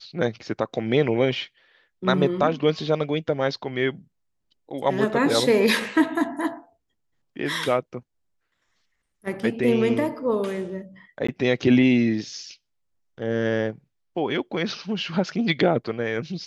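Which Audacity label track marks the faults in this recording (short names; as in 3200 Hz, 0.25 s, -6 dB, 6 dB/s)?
11.270000	11.290000	gap 15 ms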